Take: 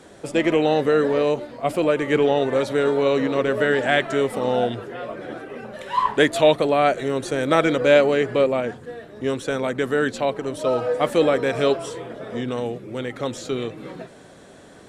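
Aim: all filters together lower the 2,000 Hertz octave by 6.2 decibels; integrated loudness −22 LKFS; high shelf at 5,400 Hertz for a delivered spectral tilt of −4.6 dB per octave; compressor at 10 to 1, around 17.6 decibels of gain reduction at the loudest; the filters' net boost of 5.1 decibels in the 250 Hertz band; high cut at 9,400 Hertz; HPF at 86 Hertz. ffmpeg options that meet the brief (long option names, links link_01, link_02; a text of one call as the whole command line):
ffmpeg -i in.wav -af "highpass=86,lowpass=9400,equalizer=frequency=250:width_type=o:gain=6.5,equalizer=frequency=2000:width_type=o:gain=-7.5,highshelf=frequency=5400:gain=-6.5,acompressor=threshold=-28dB:ratio=10,volume=11dB" out.wav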